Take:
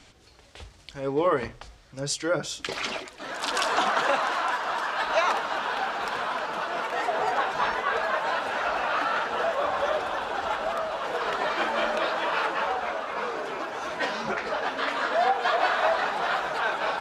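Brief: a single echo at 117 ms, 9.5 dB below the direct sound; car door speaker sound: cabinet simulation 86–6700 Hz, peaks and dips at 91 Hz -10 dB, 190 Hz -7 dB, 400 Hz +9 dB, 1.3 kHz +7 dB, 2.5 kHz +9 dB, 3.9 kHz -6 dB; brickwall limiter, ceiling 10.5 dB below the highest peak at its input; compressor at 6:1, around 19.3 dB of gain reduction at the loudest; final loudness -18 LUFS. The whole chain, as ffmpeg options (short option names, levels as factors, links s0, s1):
-af "acompressor=threshold=0.00891:ratio=6,alimiter=level_in=3.16:limit=0.0631:level=0:latency=1,volume=0.316,highpass=86,equalizer=f=91:t=q:w=4:g=-10,equalizer=f=190:t=q:w=4:g=-7,equalizer=f=400:t=q:w=4:g=9,equalizer=f=1300:t=q:w=4:g=7,equalizer=f=2500:t=q:w=4:g=9,equalizer=f=3900:t=q:w=4:g=-6,lowpass=f=6700:w=0.5412,lowpass=f=6700:w=1.3066,aecho=1:1:117:0.335,volume=12.6"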